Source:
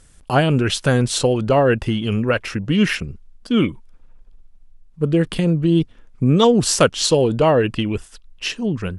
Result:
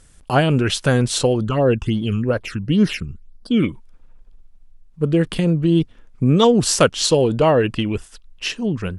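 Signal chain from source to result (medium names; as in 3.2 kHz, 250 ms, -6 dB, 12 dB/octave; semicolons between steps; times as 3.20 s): 1.35–3.62 s: phase shifter stages 8, 3.8 Hz -> 1.4 Hz, lowest notch 570–2700 Hz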